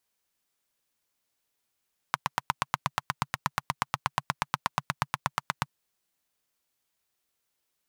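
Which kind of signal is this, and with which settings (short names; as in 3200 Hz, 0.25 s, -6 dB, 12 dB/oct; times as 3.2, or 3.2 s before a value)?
single-cylinder engine model, steady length 3.52 s, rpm 1000, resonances 140/1000 Hz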